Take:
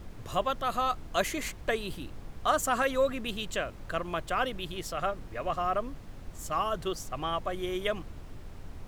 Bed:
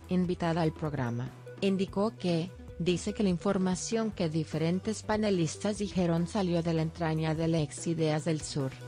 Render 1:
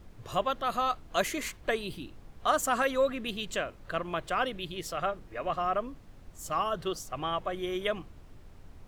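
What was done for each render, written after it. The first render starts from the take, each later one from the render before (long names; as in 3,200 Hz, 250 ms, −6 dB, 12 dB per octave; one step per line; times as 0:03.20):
noise reduction from a noise print 7 dB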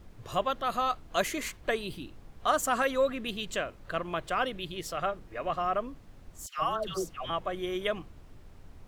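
0:06.46–0:07.30: all-pass dispersion lows, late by 127 ms, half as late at 1,000 Hz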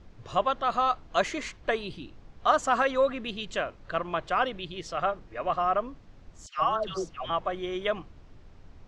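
low-pass filter 6,500 Hz 24 dB per octave
dynamic equaliser 920 Hz, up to +5 dB, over −39 dBFS, Q 0.94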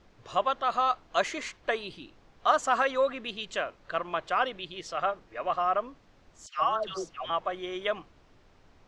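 low-shelf EQ 230 Hz −12 dB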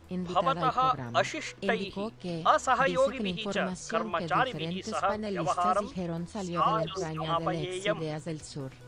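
mix in bed −6 dB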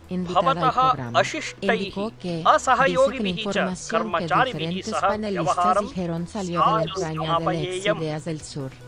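level +7 dB
brickwall limiter −3 dBFS, peak gain reduction 1 dB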